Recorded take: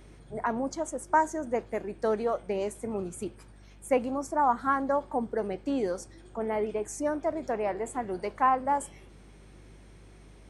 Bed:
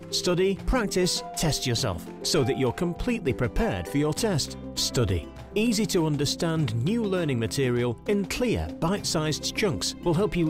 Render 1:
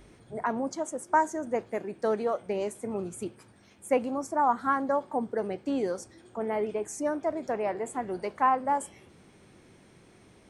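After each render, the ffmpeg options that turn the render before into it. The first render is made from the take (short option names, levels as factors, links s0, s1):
-af "bandreject=f=50:t=h:w=4,bandreject=f=100:t=h:w=4,bandreject=f=150:t=h:w=4"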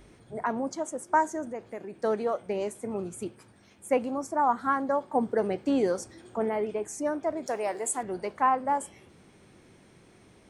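-filter_complex "[0:a]asettb=1/sr,asplit=3[s0][s1][s2];[s0]atrim=end=1.514[s3];[s1]atrim=start=1.51:end=2.01,asetpts=PTS-STARTPTS,afade=t=in:d=0.004:c=qsin,afade=t=out:st=0.496:d=0.004:c=qsin,acompressor=threshold=0.0126:ratio=2:attack=3.2:release=140:knee=1:detection=peak[s4];[s2]atrim=start=2.006[s5];[s3][s4]acrossfade=d=0.004:c1=hsin:c2=qsin[s6];[s6][s5]acrossfade=d=0.004:c1=qsin:c2=hsin,asettb=1/sr,asplit=3[s7][s8][s9];[s7]atrim=end=7.464[s10];[s8]atrim=start=7.46:end=8.03,asetpts=PTS-STARTPTS,afade=t=in:d=0.004:c=qsin,afade=t=out:st=0.566:d=0.004:c=qsin,bass=f=250:g=-9,treble=f=4000:g=15[s11];[s9]atrim=start=8.026[s12];[s10][s11]acrossfade=d=0.004:c1=hsin:c2=qsin[s13];[s13][s12]acrossfade=d=0.004:c1=qsin:c2=hsin,asplit=3[s14][s15][s16];[s14]atrim=end=5.152[s17];[s15]atrim=start=5.148:end=6.492,asetpts=PTS-STARTPTS,volume=1.58[s18];[s16]atrim=start=6.488[s19];[s17][s18]acrossfade=d=0.004:c1=hsin:c2=hsin[s20];[s20][s19]acrossfade=d=0.004:c1=hsin:c2=hsin"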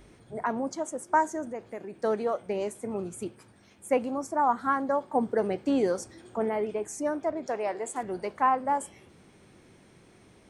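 -filter_complex "[0:a]asettb=1/sr,asplit=3[s0][s1][s2];[s0]atrim=end=7.304[s3];[s1]atrim=start=7.3:end=7.96,asetpts=PTS-STARTPTS,afade=t=in:d=0.004:c=qsin,afade=t=out:st=0.656:d=0.004:c=qsin,adynamicsmooth=sensitivity=0.5:basefreq=5700[s4];[s2]atrim=start=7.956[s5];[s3][s4]acrossfade=d=0.004:c1=hsin:c2=qsin[s6];[s6][s5]acrossfade=d=0.004:c1=qsin:c2=hsin"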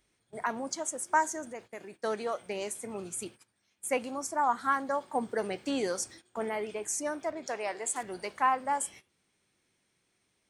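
-af "tiltshelf=f=1400:g=-7.5,agate=range=0.141:threshold=0.00398:ratio=16:detection=peak"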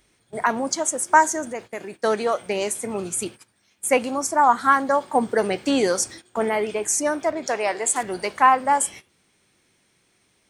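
-af "volume=3.55"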